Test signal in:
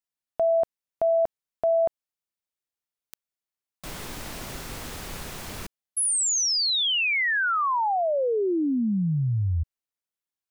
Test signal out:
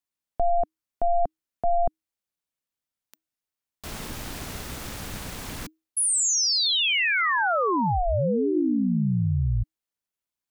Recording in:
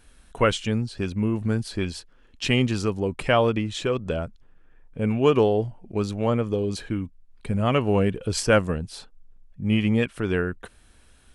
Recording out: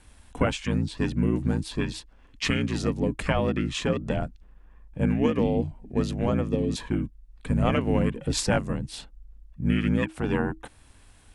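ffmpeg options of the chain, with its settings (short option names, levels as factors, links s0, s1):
-af "aeval=exprs='val(0)*sin(2*PI*350*n/s)':c=same,alimiter=limit=0.178:level=0:latency=1:release=421,afreqshift=-320,volume=1.58"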